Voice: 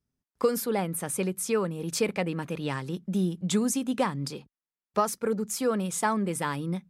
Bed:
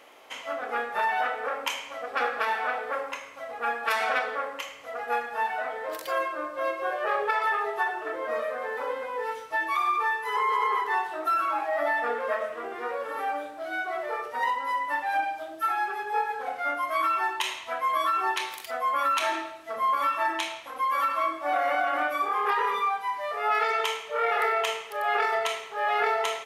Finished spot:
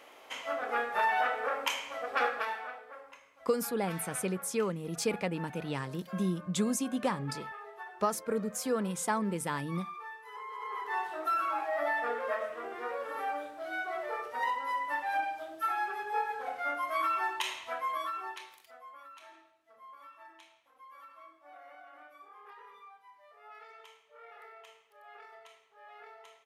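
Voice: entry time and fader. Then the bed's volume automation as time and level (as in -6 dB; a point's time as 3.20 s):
3.05 s, -4.5 dB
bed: 2.25 s -2 dB
2.86 s -18 dB
10.52 s -18 dB
11.04 s -5 dB
17.72 s -5 dB
19.08 s -27 dB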